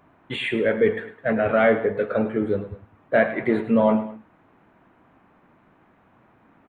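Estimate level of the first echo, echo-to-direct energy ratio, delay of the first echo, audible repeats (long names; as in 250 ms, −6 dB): −13.5 dB, −13.0 dB, 105 ms, 2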